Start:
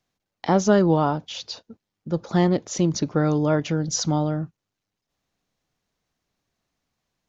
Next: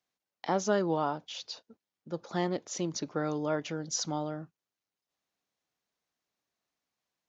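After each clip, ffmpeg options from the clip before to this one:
-af "highpass=64,equalizer=f=88:t=o:w=2.8:g=-12,volume=0.447"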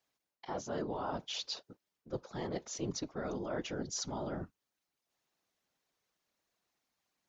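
-af "areverse,acompressor=threshold=0.0141:ratio=12,areverse,afftfilt=real='hypot(re,im)*cos(2*PI*random(0))':imag='hypot(re,im)*sin(2*PI*random(1))':win_size=512:overlap=0.75,volume=2.82"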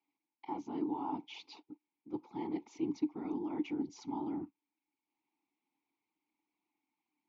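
-filter_complex "[0:a]asplit=3[s0][s1][s2];[s0]bandpass=f=300:t=q:w=8,volume=1[s3];[s1]bandpass=f=870:t=q:w=8,volume=0.501[s4];[s2]bandpass=f=2240:t=q:w=8,volume=0.355[s5];[s3][s4][s5]amix=inputs=3:normalize=0,volume=3.55"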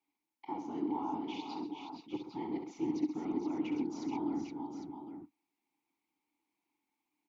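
-af "aecho=1:1:66|131|438|470|804:0.376|0.282|0.251|0.473|0.376"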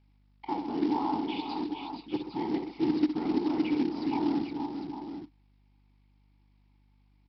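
-af "aeval=exprs='val(0)+0.000316*(sin(2*PI*50*n/s)+sin(2*PI*2*50*n/s)/2+sin(2*PI*3*50*n/s)/3+sin(2*PI*4*50*n/s)/4+sin(2*PI*5*50*n/s)/5)':c=same,aresample=11025,acrusher=bits=5:mode=log:mix=0:aa=0.000001,aresample=44100,volume=2.24"

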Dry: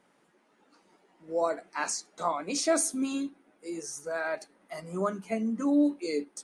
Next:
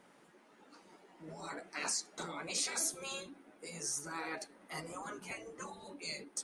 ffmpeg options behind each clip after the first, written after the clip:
-filter_complex "[0:a]asplit=2[s0][s1];[s1]acompressor=threshold=0.0158:ratio=6,volume=1[s2];[s0][s2]amix=inputs=2:normalize=0,afftfilt=real='re*lt(hypot(re,im),0.0891)':imag='im*lt(hypot(re,im),0.0891)':win_size=1024:overlap=0.75,volume=0.75"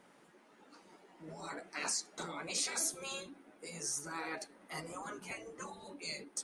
-af anull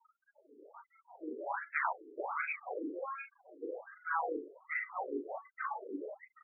-filter_complex "[0:a]afftfilt=real='re*gte(hypot(re,im),0.00224)':imag='im*gte(hypot(re,im),0.00224)':win_size=1024:overlap=0.75,asplit=2[s0][s1];[s1]adelay=39,volume=0.668[s2];[s0][s2]amix=inputs=2:normalize=0,afftfilt=real='re*between(b*sr/1024,350*pow(1900/350,0.5+0.5*sin(2*PI*1.3*pts/sr))/1.41,350*pow(1900/350,0.5+0.5*sin(2*PI*1.3*pts/sr))*1.41)':imag='im*between(b*sr/1024,350*pow(1900/350,0.5+0.5*sin(2*PI*1.3*pts/sr))/1.41,350*pow(1900/350,0.5+0.5*sin(2*PI*1.3*pts/sr))*1.41)':win_size=1024:overlap=0.75,volume=3.16"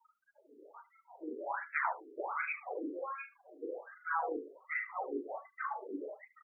-af "aecho=1:1:75:0.141"

